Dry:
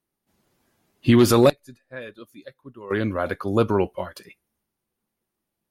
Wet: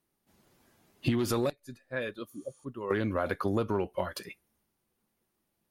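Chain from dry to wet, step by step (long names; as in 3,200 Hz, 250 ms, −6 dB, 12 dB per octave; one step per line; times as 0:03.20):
healed spectral selection 0:02.33–0:02.62, 920–10,000 Hz before
in parallel at −11 dB: hard clipping −17 dBFS, distortion −7 dB
on the sum: downward compressor 16 to 1, threshold −25 dBFS, peak gain reduction 16 dB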